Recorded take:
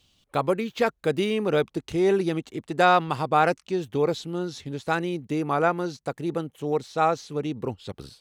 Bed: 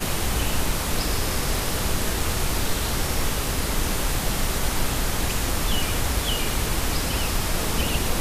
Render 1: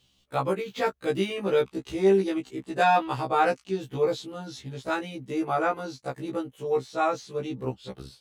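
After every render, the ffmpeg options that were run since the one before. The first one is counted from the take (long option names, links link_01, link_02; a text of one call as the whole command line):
ffmpeg -i in.wav -af "afftfilt=real='re*1.73*eq(mod(b,3),0)':imag='im*1.73*eq(mod(b,3),0)':win_size=2048:overlap=0.75" out.wav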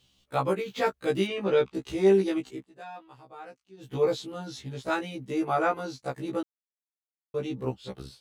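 ffmpeg -i in.wav -filter_complex "[0:a]asettb=1/sr,asplit=3[link_01][link_02][link_03];[link_01]atrim=end=1.274[link_04];[link_02]atrim=start=1.27:end=1.74,asetpts=PTS-STARTPTS,afade=type=in:duration=0.004:curve=qsin,afade=type=out:start_time=0.466:duration=0.004:curve=qsin,lowpass=5500[link_05];[link_03]atrim=start=1.736[link_06];[link_04][link_05]acrossfade=duration=0.004:curve1=hsin:curve2=qsin[link_07];[link_07][link_06]acrossfade=duration=0.004:curve1=qsin:curve2=hsin,asplit=5[link_08][link_09][link_10][link_11][link_12];[link_08]atrim=end=2.67,asetpts=PTS-STARTPTS,afade=type=out:start_time=2.51:duration=0.16:silence=0.0794328[link_13];[link_09]atrim=start=2.67:end=3.77,asetpts=PTS-STARTPTS,volume=-22dB[link_14];[link_10]atrim=start=3.77:end=6.43,asetpts=PTS-STARTPTS,afade=type=in:duration=0.16:silence=0.0794328,afade=type=out:start_time=2.656:duration=0.004:curve=hsin[link_15];[link_11]atrim=start=6.43:end=7.34,asetpts=PTS-STARTPTS,volume=0[link_16];[link_12]atrim=start=7.34,asetpts=PTS-STARTPTS,afade=type=in:duration=0.004:curve=hsin[link_17];[link_13][link_14][link_15][link_16][link_17]concat=n=5:v=0:a=1" out.wav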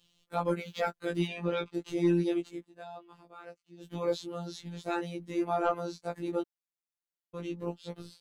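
ffmpeg -i in.wav -af "afftfilt=real='hypot(re,im)*cos(PI*b)':imag='0':win_size=1024:overlap=0.75,asoftclip=type=tanh:threshold=-15.5dB" out.wav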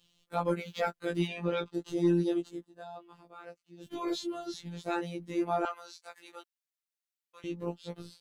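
ffmpeg -i in.wav -filter_complex "[0:a]asettb=1/sr,asplit=3[link_01][link_02][link_03];[link_01]atrim=end=1.604[link_04];[link_02]atrim=start=1.6:end=2.96,asetpts=PTS-STARTPTS,afade=type=in:duration=0.004:curve=qsin,afade=type=out:start_time=1.356:duration=0.004:curve=qsin,equalizer=frequency=2300:width=4.5:gain=-13[link_05];[link_03]atrim=start=2.956[link_06];[link_04][link_05]acrossfade=duration=0.004:curve1=hsin:curve2=qsin[link_07];[link_07][link_06]acrossfade=duration=0.004:curve1=qsin:curve2=hsin,asettb=1/sr,asplit=3[link_08][link_09][link_10];[link_08]atrim=end=3.864[link_11];[link_09]atrim=start=3.86:end=4.54,asetpts=PTS-STARTPTS,afade=type=in:duration=0.004:curve=qsin,afade=type=out:start_time=0.676:duration=0.004:curve=qsin,aecho=1:1:2.9:0.99,atrim=end_sample=29988[link_12];[link_10]atrim=start=4.536[link_13];[link_11][link_12]acrossfade=duration=0.004:curve1=hsin:curve2=qsin[link_14];[link_14][link_13]acrossfade=duration=0.004:curve1=qsin:curve2=hsin,asettb=1/sr,asplit=3[link_15][link_16][link_17];[link_15]atrim=end=5.654[link_18];[link_16]atrim=start=5.65:end=7.44,asetpts=PTS-STARTPTS,afade=type=in:duration=0.004:curve=qsin,afade=type=out:start_time=1.786:duration=0.004:curve=qsin,highpass=1400[link_19];[link_17]atrim=start=7.436[link_20];[link_18][link_19]acrossfade=duration=0.004:curve1=hsin:curve2=qsin[link_21];[link_21][link_20]acrossfade=duration=0.004:curve1=qsin:curve2=hsin" out.wav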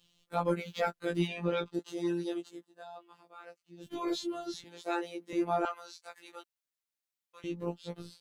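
ffmpeg -i in.wav -filter_complex "[0:a]asettb=1/sr,asplit=3[link_01][link_02][link_03];[link_01]atrim=end=1.794[link_04];[link_02]atrim=start=1.79:end=3.61,asetpts=PTS-STARTPTS,afade=type=in:duration=0.004:curve=qsin,afade=type=out:start_time=1.816:duration=0.004:curve=qsin,highpass=frequency=600:poles=1[link_05];[link_03]atrim=start=3.606[link_06];[link_04][link_05]acrossfade=duration=0.004:curve1=hsin:curve2=qsin[link_07];[link_07][link_06]acrossfade=duration=0.004:curve1=qsin:curve2=hsin,asettb=1/sr,asplit=3[link_08][link_09][link_10];[link_08]atrim=end=4.644[link_11];[link_09]atrim=start=4.64:end=5.33,asetpts=PTS-STARTPTS,afade=type=in:duration=0.004:curve=qsin,afade=type=out:start_time=0.686:duration=0.004:curve=qsin,highpass=frequency=300:width=0.5412,highpass=frequency=300:width=1.3066[link_12];[link_10]atrim=start=5.326[link_13];[link_11][link_12]acrossfade=duration=0.004:curve1=hsin:curve2=qsin[link_14];[link_14][link_13]acrossfade=duration=0.004:curve1=qsin:curve2=hsin" out.wav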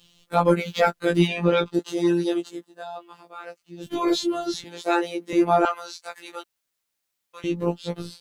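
ffmpeg -i in.wav -af "volume=11.5dB" out.wav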